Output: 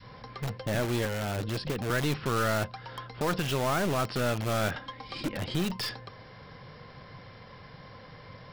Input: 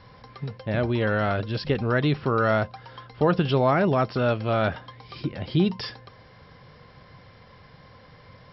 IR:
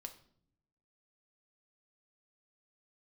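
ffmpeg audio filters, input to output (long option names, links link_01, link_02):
-filter_complex "[0:a]equalizer=frequency=72:width=6.9:gain=-14.5,asettb=1/sr,asplit=3[link_01][link_02][link_03];[link_01]atrim=end=1.054[link_04];[link_02]atrim=start=1.05:end=1.9,asetpts=PTS-STARTPTS,afade=type=in:duration=0.004:curve=qsin,afade=type=out:start_time=0.846:duration=0.004:curve=qsin,acrossover=split=340|840[link_05][link_06][link_07];[link_05]acompressor=threshold=-30dB:ratio=4[link_08];[link_06]acompressor=threshold=-32dB:ratio=4[link_09];[link_07]acompressor=threshold=-40dB:ratio=4[link_10];[link_08][link_09][link_10]amix=inputs=3:normalize=0[link_11];[link_03]atrim=start=1.896[link_12];[link_04][link_11]acrossfade=duration=0.004:curve1=hsin:curve2=qsin[link_13];[link_13][link_12]acrossfade=duration=0.004:curve1=qsin:curve2=hsin,adynamicequalizer=threshold=0.0141:dfrequency=660:dqfactor=0.82:tfrequency=660:tqfactor=0.82:attack=5:release=100:ratio=0.375:range=1.5:mode=cutabove:tftype=bell,acrossover=split=920[link_14][link_15];[link_14]alimiter=limit=-19.5dB:level=0:latency=1:release=367[link_16];[link_16][link_15]amix=inputs=2:normalize=0,asettb=1/sr,asplit=3[link_17][link_18][link_19];[link_17]atrim=end=4.764[link_20];[link_18]atrim=start=4.76:end=5.37,asetpts=PTS-STARTPTS,afade=type=in:duration=0.004:curve=qsin,afade=type=out:start_time=0.606:duration=0.004:curve=qsin,aecho=1:1:3.7:0.58,atrim=end_sample=26901[link_21];[link_19]atrim=start=5.366[link_22];[link_20][link_21]acrossfade=duration=0.004:curve1=hsin:curve2=qsin[link_23];[link_23][link_22]acrossfade=duration=0.004:curve1=qsin:curve2=hsin,asplit=2[link_24][link_25];[link_25]aeval=exprs='(mod(23.7*val(0)+1,2)-1)/23.7':channel_layout=same,volume=-4dB[link_26];[link_24][link_26]amix=inputs=2:normalize=0,aeval=exprs='(tanh(11.2*val(0)+0.5)-tanh(0.5))/11.2':channel_layout=same"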